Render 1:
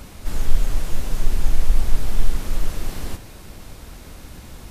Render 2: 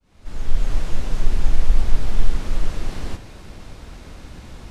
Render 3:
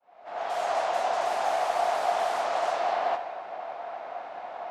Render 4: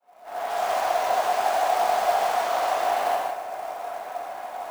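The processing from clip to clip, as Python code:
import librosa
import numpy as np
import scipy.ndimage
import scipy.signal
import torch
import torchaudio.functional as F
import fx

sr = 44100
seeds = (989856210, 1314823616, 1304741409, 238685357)

y1 = fx.fade_in_head(x, sr, length_s=0.74)
y1 = fx.air_absorb(y1, sr, metres=63.0)
y1 = F.gain(torch.from_numpy(y1), 1.0).numpy()
y2 = fx.env_lowpass(y1, sr, base_hz=2000.0, full_db=-7.0)
y2 = fx.highpass_res(y2, sr, hz=700.0, q=8.6)
y2 = fx.dynamic_eq(y2, sr, hz=1100.0, q=0.71, threshold_db=-42.0, ratio=4.0, max_db=6)
y3 = scipy.signal.sosfilt(scipy.signal.butter(2, 120.0, 'highpass', fs=sr, output='sos'), y2)
y3 = fx.quant_float(y3, sr, bits=2)
y3 = fx.rev_gated(y3, sr, seeds[0], gate_ms=200, shape='flat', drr_db=-1.0)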